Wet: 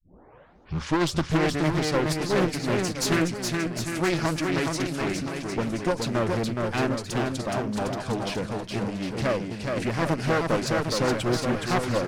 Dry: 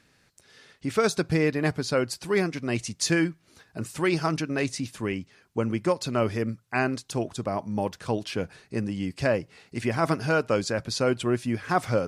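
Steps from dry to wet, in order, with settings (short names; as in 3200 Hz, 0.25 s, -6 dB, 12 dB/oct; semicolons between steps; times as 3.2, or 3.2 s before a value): tape start at the beginning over 1.30 s; one-sided clip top -30.5 dBFS; on a send: bouncing-ball echo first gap 0.42 s, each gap 0.8×, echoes 5; on the sum: Doppler distortion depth 0.45 ms; gain +2 dB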